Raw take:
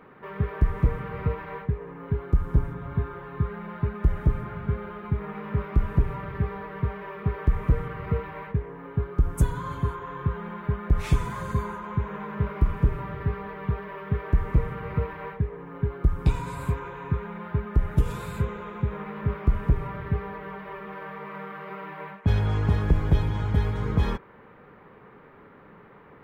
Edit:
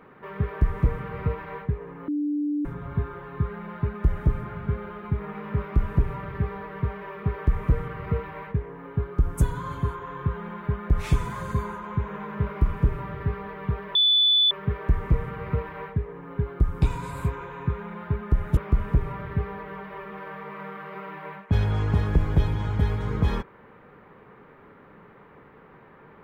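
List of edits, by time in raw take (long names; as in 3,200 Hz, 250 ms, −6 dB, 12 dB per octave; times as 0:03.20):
0:02.08–0:02.65: beep over 294 Hz −23 dBFS
0:13.95: insert tone 3,480 Hz −16 dBFS 0.56 s
0:18.01–0:19.32: remove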